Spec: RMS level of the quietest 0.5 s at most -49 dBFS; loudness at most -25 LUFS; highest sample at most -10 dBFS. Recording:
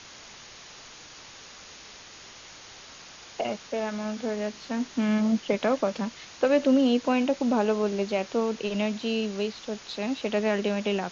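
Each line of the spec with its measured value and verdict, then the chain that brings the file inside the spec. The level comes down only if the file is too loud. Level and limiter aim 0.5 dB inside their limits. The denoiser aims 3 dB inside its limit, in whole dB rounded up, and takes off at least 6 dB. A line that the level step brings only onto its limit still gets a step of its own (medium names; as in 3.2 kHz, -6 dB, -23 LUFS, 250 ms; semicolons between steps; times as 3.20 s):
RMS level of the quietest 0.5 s -47 dBFS: fail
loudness -27.0 LUFS: pass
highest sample -11.0 dBFS: pass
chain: noise reduction 6 dB, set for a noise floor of -47 dBFS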